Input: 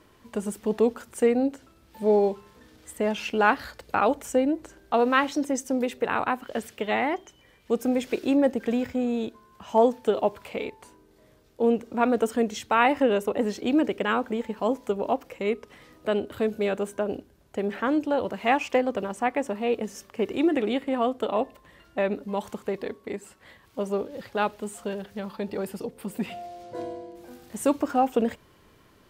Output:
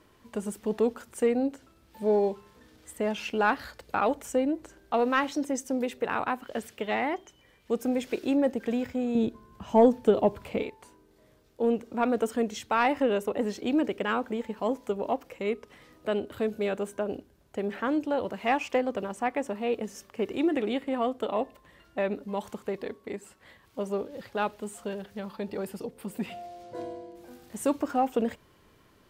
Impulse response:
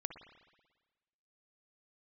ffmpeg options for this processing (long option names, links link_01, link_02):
-filter_complex "[0:a]asoftclip=type=tanh:threshold=-8dB,asettb=1/sr,asplit=3[link_01][link_02][link_03];[link_01]atrim=end=9.154[link_04];[link_02]atrim=start=9.15:end=10.63,asetpts=PTS-STARTPTS,afade=type=in:duration=0.004:curve=qsin,afade=type=out:start_time=1.476:duration=0.004:curve=qsin,lowshelf=frequency=360:gain=12[link_05];[link_03]atrim=start=10.626[link_06];[link_04][link_05]acrossfade=duration=0.004:curve1=hsin:curve2=qsin[link_07];[link_07][link_06]acrossfade=duration=0.004:curve1=qsin:curve2=hsin,volume=-3dB"